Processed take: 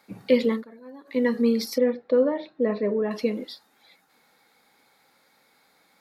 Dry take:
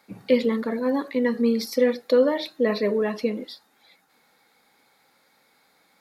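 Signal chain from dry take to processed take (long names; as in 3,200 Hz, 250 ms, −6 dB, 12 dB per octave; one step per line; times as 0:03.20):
0:00.52–0:01.18: duck −20 dB, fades 0.13 s
0:01.78–0:03.11: head-to-tape spacing loss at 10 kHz 41 dB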